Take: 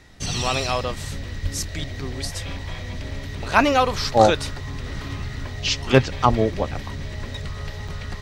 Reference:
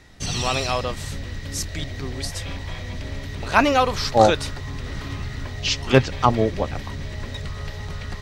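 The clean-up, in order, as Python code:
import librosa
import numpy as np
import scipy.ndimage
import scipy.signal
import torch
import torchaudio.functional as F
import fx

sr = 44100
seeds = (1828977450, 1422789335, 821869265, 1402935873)

y = fx.highpass(x, sr, hz=140.0, slope=24, at=(1.42, 1.54), fade=0.02)
y = fx.highpass(y, sr, hz=140.0, slope=24, at=(6.29, 6.41), fade=0.02)
y = fx.fix_interpolate(y, sr, at_s=(0.83, 1.28, 3.11, 6.53, 7.88), length_ms=2.1)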